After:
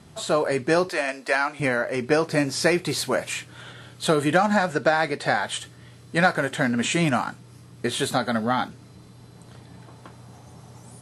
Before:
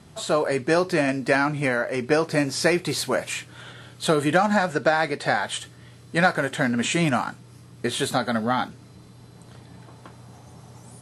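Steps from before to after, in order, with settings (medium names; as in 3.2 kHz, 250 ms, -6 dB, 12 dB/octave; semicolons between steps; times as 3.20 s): 0.89–1.60 s: high-pass 580 Hz 12 dB/octave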